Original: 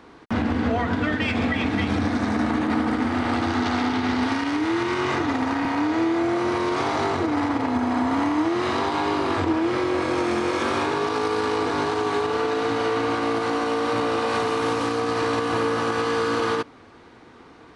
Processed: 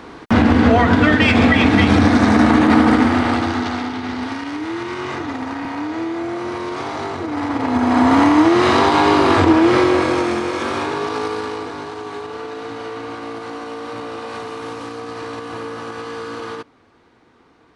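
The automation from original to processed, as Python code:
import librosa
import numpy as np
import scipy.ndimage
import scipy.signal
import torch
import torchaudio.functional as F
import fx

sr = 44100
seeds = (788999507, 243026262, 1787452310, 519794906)

y = fx.gain(x, sr, db=fx.line((2.95, 10.5), (3.92, -2.0), (7.22, -2.0), (8.07, 10.0), (9.8, 10.0), (10.48, 1.5), (11.22, 1.5), (11.79, -6.0)))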